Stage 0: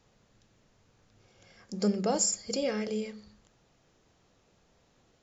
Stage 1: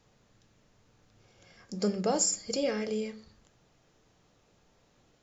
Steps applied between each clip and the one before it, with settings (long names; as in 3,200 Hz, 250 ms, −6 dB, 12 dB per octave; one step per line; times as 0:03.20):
convolution reverb RT60 0.30 s, pre-delay 7 ms, DRR 10.5 dB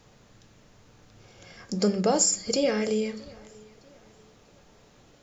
in parallel at +0.5 dB: downward compressor, threshold −37 dBFS, peak gain reduction 13.5 dB
on the sum: tape delay 639 ms, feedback 43%, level −23 dB, low-pass 5,900 Hz
level +3 dB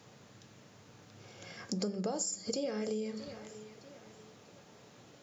high-pass filter 97 Hz 24 dB per octave
dynamic equaliser 2,300 Hz, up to −6 dB, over −47 dBFS, Q 1.1
downward compressor 6 to 1, threshold −33 dBFS, peak gain reduction 14 dB